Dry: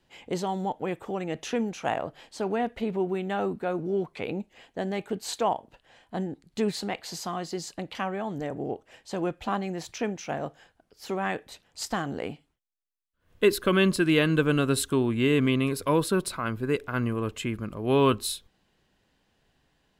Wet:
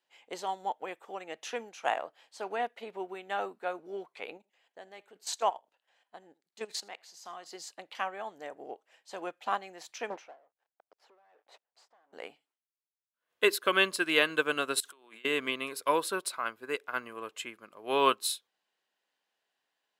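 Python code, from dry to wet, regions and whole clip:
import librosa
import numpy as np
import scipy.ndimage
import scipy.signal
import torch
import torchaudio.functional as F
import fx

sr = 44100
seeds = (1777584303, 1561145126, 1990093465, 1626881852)

y = fx.chain(x, sr, fx.level_steps(step_db=12),
    fx.dynamic_eq(hz=6100.0, q=1.7, threshold_db=-55.0, ratio=4.0, max_db=6),
    fx.echo_single(ms=80, db=-21.5), at=(4.37, 7.46))
y = fx.chain(y, sr, fx.leveller(passes=5),
    fx.bandpass_q(hz=610.0, q=0.98),
    fx.tremolo_db(hz=1.3, depth_db=32), at=(10.1, 12.13))
y = fx.chain(y, sr, fx.highpass(hz=160.0, slope=12),
    fx.low_shelf(hz=410.0, db=-10.5),
    fx.over_compress(threshold_db=-41.0, ratio=-1.0), at=(14.8, 15.25))
y = scipy.signal.sosfilt(scipy.signal.butter(2, 620.0, 'highpass', fs=sr, output='sos'), y)
y = fx.upward_expand(y, sr, threshold_db=-49.0, expansion=1.5)
y = F.gain(torch.from_numpy(y), 3.0).numpy()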